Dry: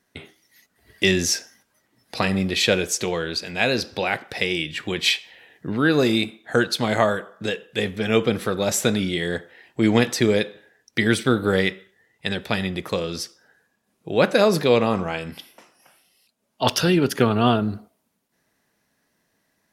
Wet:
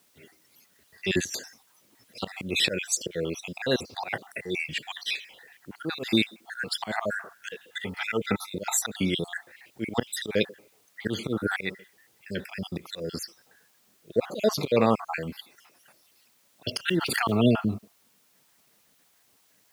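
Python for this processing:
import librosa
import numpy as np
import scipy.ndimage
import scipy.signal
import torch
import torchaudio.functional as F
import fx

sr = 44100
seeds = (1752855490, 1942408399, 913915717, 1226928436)

y = fx.spec_dropout(x, sr, seeds[0], share_pct=55)
y = fx.auto_swell(y, sr, attack_ms=154.0)
y = fx.over_compress(y, sr, threshold_db=-30.0, ratio=-0.5, at=(1.19, 2.19), fade=0.02)
y = fx.small_body(y, sr, hz=(900.0, 1300.0, 2000.0), ring_ms=45, db=15, at=(7.66, 8.74))
y = fx.dmg_noise_colour(y, sr, seeds[1], colour='white', level_db=-65.0)
y = scipy.signal.sosfilt(scipy.signal.butter(2, 84.0, 'highpass', fs=sr, output='sos'), y)
y = fx.pre_swell(y, sr, db_per_s=25.0, at=(16.88, 17.41))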